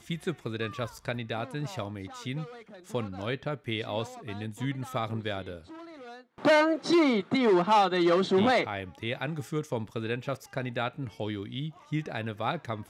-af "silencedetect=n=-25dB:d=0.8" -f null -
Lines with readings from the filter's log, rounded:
silence_start: 5.40
silence_end: 6.45 | silence_duration: 1.05